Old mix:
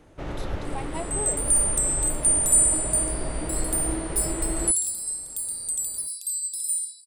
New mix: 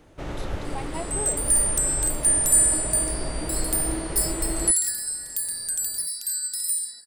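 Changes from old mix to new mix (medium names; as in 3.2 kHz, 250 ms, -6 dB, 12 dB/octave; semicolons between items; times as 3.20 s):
first sound: add treble shelf 5.3 kHz +9 dB; second sound: remove rippled Chebyshev high-pass 2.5 kHz, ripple 9 dB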